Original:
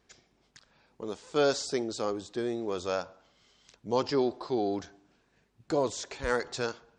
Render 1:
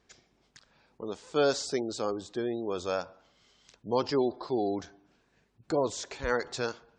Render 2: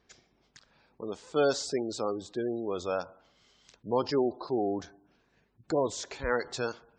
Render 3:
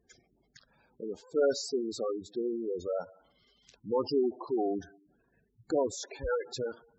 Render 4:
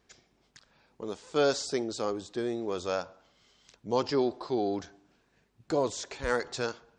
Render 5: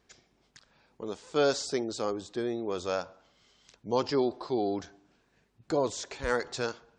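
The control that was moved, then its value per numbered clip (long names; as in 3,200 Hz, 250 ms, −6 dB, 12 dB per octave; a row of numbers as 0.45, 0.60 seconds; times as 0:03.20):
gate on every frequency bin, under each frame's peak: −35, −25, −10, −60, −45 decibels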